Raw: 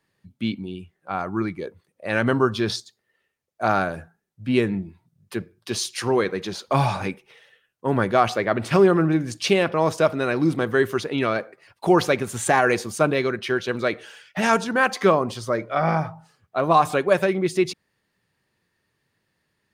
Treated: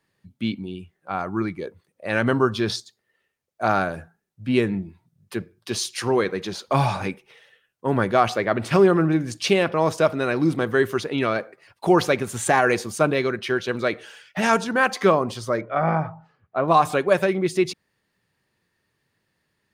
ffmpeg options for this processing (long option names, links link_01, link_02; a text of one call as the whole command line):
ffmpeg -i in.wav -filter_complex "[0:a]asettb=1/sr,asplit=3[link_01][link_02][link_03];[link_01]atrim=end=15.614[link_04];[link_02]atrim=start=15.61:end=16.68,asetpts=PTS-STARTPTS,afade=type=in:duration=0.004:curve=qsin,afade=type=out:start_time=1.066:duration=0.004:curve=qsin,lowpass=2200[link_05];[link_03]atrim=start=16.676[link_06];[link_04][link_05]acrossfade=duration=0.004:curve1=hsin:curve2=qsin[link_07];[link_07][link_06]acrossfade=duration=0.004:curve1=qsin:curve2=hsin" out.wav